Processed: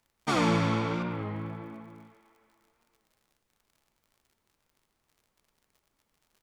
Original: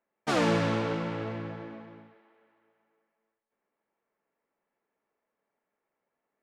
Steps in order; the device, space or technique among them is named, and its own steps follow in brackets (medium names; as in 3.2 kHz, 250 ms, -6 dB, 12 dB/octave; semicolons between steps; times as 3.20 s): comb 0.9 ms, depth 41%; 1.03–2.00 s: distance through air 210 m; warped LP (warped record 33 1/3 rpm, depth 100 cents; crackle 65 per s -52 dBFS; pink noise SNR 44 dB)